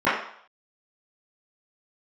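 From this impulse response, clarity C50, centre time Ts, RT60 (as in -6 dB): 3.0 dB, 49 ms, 0.60 s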